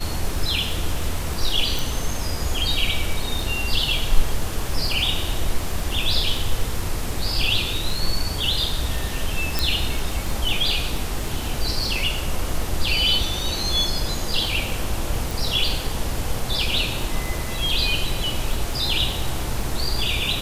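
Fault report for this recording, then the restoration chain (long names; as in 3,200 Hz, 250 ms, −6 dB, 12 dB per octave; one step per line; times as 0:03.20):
surface crackle 33 per second −27 dBFS
0:01.79: click
0:09.59: click
0:15.31: click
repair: click removal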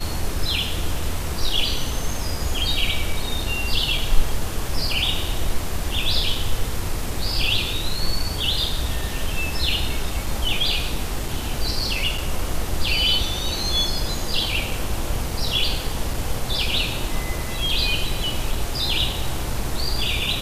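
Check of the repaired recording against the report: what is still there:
0:09.59: click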